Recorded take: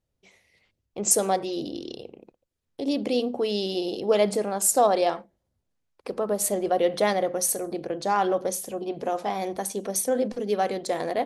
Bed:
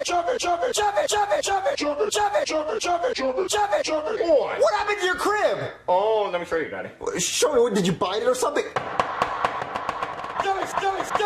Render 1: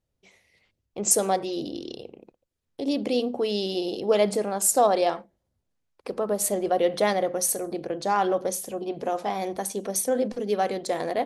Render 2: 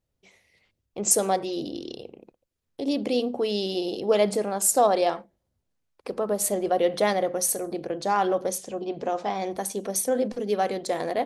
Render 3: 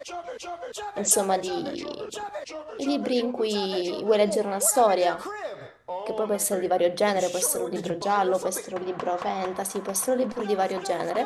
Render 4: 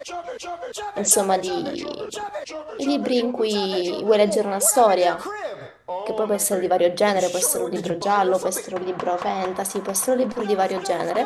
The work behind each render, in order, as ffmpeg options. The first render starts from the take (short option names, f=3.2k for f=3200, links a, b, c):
-af anull
-filter_complex "[0:a]asettb=1/sr,asplit=3[a][b][c];[a]atrim=end=8.584[d];[b]atrim=start=8.58:end=9.51,asetpts=PTS-STARTPTS,afade=t=in:d=0.004:c=qsin,afade=t=out:st=0.926:d=0.004:c=qsin,lowpass=f=7.5k:w=0.5412,lowpass=f=7.5k:w=1.3066[e];[c]atrim=start=9.506[f];[d][e]acrossfade=d=0.004:c1=hsin:c2=qsin[g];[g][f]acrossfade=d=0.004:c1=qsin:c2=hsin"
-filter_complex "[1:a]volume=-13dB[a];[0:a][a]amix=inputs=2:normalize=0"
-af "volume=4dB"